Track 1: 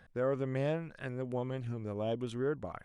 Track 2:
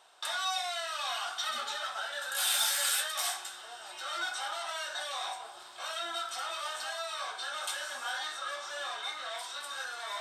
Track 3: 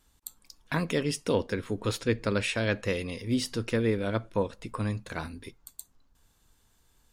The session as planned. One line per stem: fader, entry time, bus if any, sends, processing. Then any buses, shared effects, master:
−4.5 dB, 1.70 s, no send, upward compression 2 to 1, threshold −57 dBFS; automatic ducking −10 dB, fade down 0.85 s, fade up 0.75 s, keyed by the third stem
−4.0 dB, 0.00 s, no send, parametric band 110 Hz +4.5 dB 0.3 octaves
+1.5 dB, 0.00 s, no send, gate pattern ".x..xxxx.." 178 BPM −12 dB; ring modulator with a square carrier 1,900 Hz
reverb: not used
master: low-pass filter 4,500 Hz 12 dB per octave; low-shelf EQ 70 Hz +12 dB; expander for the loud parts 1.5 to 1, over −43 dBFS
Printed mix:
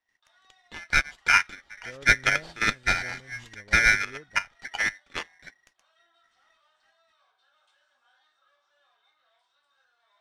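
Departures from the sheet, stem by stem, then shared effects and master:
stem 1 −4.5 dB → +5.0 dB
stem 2 −4.0 dB → −15.5 dB
stem 3 +1.5 dB → +8.5 dB

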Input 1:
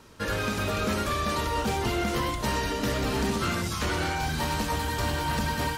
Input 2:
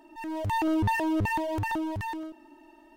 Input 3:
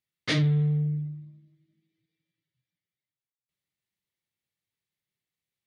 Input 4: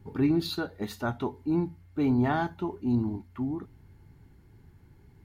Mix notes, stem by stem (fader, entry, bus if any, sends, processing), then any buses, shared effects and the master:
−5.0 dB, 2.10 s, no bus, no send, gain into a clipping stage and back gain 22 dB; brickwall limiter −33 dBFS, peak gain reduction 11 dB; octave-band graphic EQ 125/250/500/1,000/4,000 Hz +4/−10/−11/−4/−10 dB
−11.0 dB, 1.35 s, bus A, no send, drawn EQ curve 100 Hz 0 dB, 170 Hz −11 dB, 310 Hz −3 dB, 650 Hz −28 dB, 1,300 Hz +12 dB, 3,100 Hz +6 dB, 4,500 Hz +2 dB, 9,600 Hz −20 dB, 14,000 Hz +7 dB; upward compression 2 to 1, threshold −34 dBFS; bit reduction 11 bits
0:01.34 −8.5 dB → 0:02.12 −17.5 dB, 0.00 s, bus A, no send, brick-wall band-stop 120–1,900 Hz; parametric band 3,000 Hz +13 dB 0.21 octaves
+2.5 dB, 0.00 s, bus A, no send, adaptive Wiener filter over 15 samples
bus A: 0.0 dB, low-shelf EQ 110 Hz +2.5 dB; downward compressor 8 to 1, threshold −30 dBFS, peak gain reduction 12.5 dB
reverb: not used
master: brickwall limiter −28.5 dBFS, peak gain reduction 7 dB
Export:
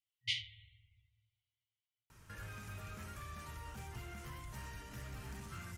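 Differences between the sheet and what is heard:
stem 2: muted
stem 4: muted
master: missing brickwall limiter −28.5 dBFS, peak gain reduction 7 dB

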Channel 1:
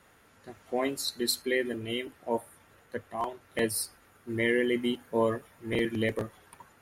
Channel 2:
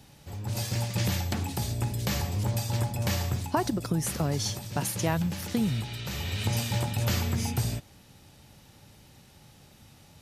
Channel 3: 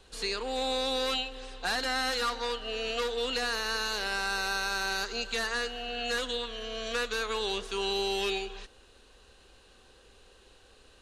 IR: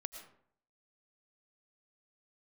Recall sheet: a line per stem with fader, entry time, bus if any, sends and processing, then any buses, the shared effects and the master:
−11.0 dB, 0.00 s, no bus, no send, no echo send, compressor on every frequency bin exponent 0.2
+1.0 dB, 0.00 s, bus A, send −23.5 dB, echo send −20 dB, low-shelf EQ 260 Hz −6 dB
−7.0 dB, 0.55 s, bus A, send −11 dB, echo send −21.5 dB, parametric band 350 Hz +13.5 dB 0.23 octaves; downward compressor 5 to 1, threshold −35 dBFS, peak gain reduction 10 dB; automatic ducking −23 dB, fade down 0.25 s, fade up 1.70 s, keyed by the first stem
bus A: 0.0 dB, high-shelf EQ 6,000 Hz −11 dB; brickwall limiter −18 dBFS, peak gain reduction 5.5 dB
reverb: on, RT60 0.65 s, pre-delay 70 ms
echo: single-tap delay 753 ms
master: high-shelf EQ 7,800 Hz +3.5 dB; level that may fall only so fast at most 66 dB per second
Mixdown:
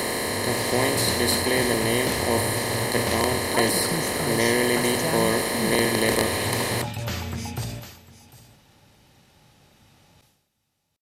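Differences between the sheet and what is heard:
stem 1 −11.0 dB → −1.0 dB
stem 3: muted

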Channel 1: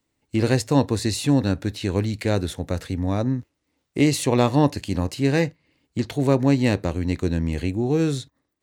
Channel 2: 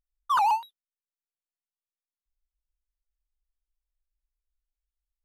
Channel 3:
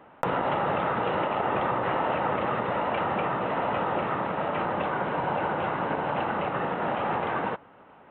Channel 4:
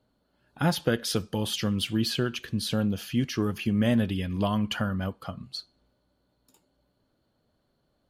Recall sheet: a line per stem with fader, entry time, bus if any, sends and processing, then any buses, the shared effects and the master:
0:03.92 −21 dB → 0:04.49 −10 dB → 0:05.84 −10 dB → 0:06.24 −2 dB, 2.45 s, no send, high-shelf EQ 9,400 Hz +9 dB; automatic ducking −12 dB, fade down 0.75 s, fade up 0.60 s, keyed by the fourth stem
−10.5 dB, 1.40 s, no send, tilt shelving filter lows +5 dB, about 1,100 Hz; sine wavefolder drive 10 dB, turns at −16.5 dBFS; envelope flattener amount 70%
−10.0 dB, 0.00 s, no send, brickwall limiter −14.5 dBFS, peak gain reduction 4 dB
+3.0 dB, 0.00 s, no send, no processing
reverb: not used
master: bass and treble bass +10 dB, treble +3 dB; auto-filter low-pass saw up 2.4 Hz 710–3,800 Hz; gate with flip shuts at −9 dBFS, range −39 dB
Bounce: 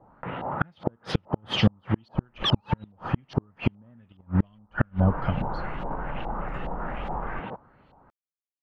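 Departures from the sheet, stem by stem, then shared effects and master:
stem 1: muted
stem 2: entry 1.40 s → 2.15 s

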